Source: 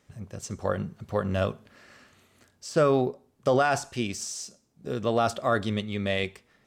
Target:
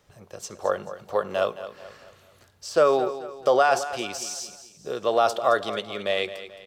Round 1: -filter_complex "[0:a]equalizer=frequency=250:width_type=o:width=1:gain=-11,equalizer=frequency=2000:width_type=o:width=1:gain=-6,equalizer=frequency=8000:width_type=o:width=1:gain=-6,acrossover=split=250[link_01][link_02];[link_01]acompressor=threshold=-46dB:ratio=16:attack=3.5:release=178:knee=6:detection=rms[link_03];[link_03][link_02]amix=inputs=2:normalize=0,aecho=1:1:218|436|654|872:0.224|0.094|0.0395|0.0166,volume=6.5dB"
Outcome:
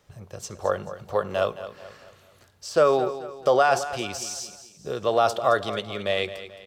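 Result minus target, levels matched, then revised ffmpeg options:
downward compressor: peak gain reduction −11 dB
-filter_complex "[0:a]equalizer=frequency=250:width_type=o:width=1:gain=-11,equalizer=frequency=2000:width_type=o:width=1:gain=-6,equalizer=frequency=8000:width_type=o:width=1:gain=-6,acrossover=split=250[link_01][link_02];[link_01]acompressor=threshold=-58dB:ratio=16:attack=3.5:release=178:knee=6:detection=rms[link_03];[link_03][link_02]amix=inputs=2:normalize=0,aecho=1:1:218|436|654|872:0.224|0.094|0.0395|0.0166,volume=6.5dB"

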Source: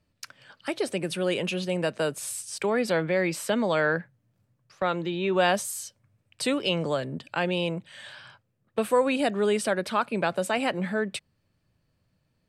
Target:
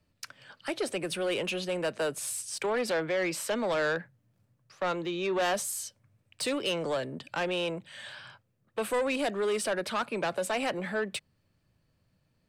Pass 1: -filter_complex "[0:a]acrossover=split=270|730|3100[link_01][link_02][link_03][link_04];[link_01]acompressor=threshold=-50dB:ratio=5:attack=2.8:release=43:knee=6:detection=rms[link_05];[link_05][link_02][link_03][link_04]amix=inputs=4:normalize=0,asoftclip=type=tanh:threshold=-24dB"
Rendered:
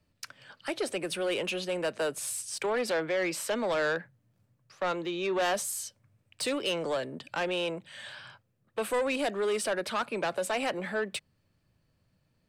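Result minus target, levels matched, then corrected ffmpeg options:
downward compressor: peak gain reduction +5 dB
-filter_complex "[0:a]acrossover=split=270|730|3100[link_01][link_02][link_03][link_04];[link_01]acompressor=threshold=-43.5dB:ratio=5:attack=2.8:release=43:knee=6:detection=rms[link_05];[link_05][link_02][link_03][link_04]amix=inputs=4:normalize=0,asoftclip=type=tanh:threshold=-24dB"

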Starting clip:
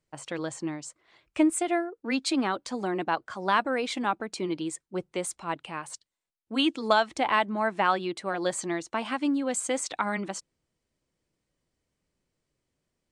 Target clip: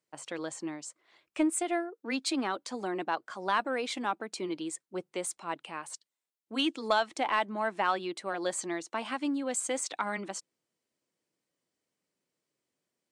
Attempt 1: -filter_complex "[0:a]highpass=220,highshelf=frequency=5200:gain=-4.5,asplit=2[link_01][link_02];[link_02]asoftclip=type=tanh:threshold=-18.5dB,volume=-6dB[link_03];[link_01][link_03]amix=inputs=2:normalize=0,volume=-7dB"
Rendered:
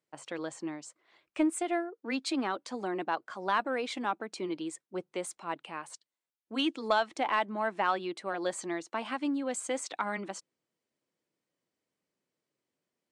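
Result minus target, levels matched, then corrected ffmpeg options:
8,000 Hz band −4.5 dB
-filter_complex "[0:a]highpass=220,highshelf=frequency=5200:gain=3,asplit=2[link_01][link_02];[link_02]asoftclip=type=tanh:threshold=-18.5dB,volume=-6dB[link_03];[link_01][link_03]amix=inputs=2:normalize=0,volume=-7dB"

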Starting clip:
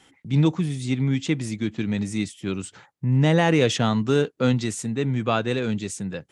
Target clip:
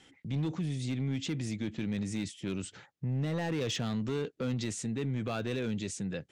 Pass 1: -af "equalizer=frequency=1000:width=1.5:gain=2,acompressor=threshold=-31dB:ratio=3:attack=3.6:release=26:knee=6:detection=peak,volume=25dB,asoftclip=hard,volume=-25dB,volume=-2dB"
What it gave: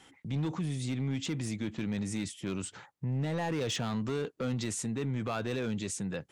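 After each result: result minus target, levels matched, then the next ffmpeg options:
1,000 Hz band +3.5 dB; 8,000 Hz band +3.0 dB
-af "equalizer=frequency=1000:width=1.5:gain=-6.5,acompressor=threshold=-31dB:ratio=3:attack=3.6:release=26:knee=6:detection=peak,volume=25dB,asoftclip=hard,volume=-25dB,volume=-2dB"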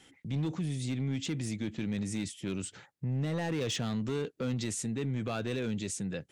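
8,000 Hz band +3.0 dB
-af "equalizer=frequency=1000:width=1.5:gain=-6.5,acompressor=threshold=-31dB:ratio=3:attack=3.6:release=26:knee=6:detection=peak,lowpass=7300,volume=25dB,asoftclip=hard,volume=-25dB,volume=-2dB"

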